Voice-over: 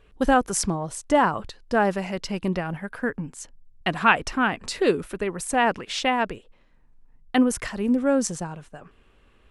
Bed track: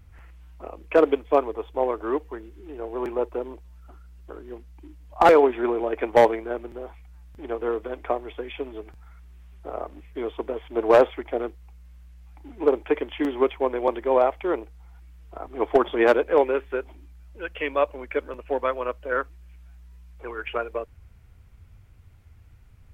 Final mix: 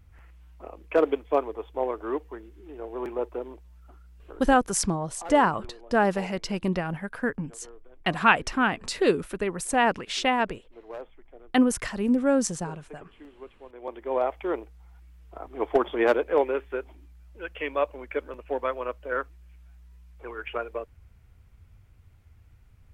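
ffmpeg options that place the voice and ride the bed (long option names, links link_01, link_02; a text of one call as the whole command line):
ffmpeg -i stem1.wav -i stem2.wav -filter_complex "[0:a]adelay=4200,volume=-1dB[link_01];[1:a]volume=16dB,afade=type=out:start_time=4.26:duration=0.62:silence=0.105925,afade=type=in:start_time=13.69:duration=0.73:silence=0.1[link_02];[link_01][link_02]amix=inputs=2:normalize=0" out.wav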